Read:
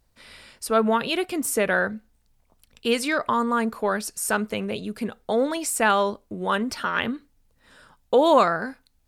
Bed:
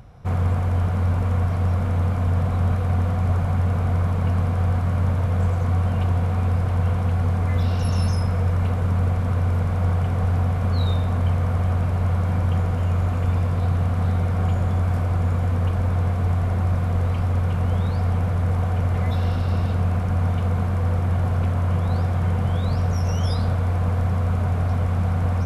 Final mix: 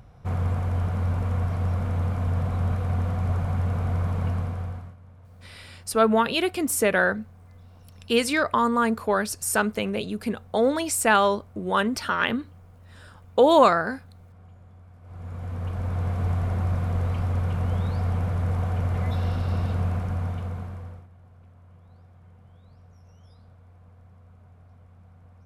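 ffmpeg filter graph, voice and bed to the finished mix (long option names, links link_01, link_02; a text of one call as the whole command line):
ffmpeg -i stem1.wav -i stem2.wav -filter_complex "[0:a]adelay=5250,volume=1dB[link_01];[1:a]volume=20dB,afade=type=out:start_time=4.24:duration=0.72:silence=0.0630957,afade=type=in:start_time=15.01:duration=1.22:silence=0.0595662,afade=type=out:start_time=19.83:duration=1.25:silence=0.0473151[link_02];[link_01][link_02]amix=inputs=2:normalize=0" out.wav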